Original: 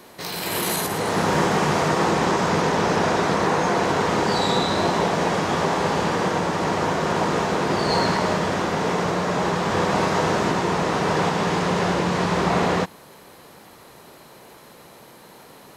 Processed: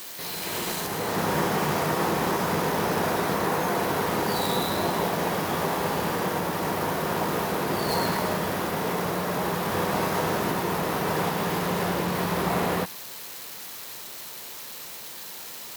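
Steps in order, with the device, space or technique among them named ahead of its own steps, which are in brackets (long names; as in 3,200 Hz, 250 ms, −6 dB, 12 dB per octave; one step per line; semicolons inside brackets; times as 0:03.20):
budget class-D amplifier (gap after every zero crossing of 0.078 ms; spike at every zero crossing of −19.5 dBFS)
level −5 dB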